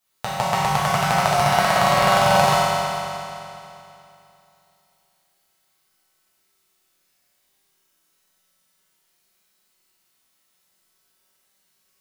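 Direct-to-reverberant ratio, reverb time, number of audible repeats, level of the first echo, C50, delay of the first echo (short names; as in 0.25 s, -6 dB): -10.5 dB, 2.8 s, none, none, -4.5 dB, none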